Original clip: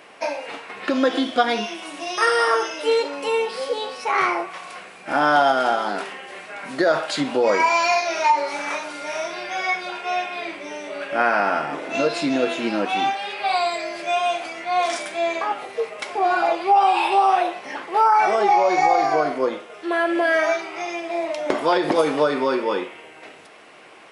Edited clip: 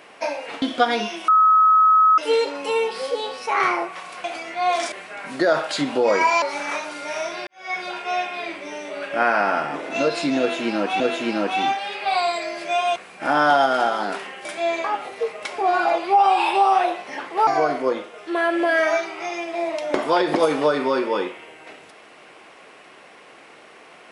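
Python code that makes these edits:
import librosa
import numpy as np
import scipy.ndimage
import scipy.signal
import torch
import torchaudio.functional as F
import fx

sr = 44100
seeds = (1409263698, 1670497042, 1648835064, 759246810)

y = fx.edit(x, sr, fx.cut(start_s=0.62, length_s=0.58),
    fx.bleep(start_s=1.86, length_s=0.9, hz=1280.0, db=-11.0),
    fx.swap(start_s=4.82, length_s=1.49, other_s=14.34, other_length_s=0.68),
    fx.cut(start_s=7.81, length_s=0.6),
    fx.fade_in_span(start_s=9.46, length_s=0.33, curve='qua'),
    fx.repeat(start_s=12.38, length_s=0.61, count=2),
    fx.cut(start_s=18.04, length_s=0.99), tone=tone)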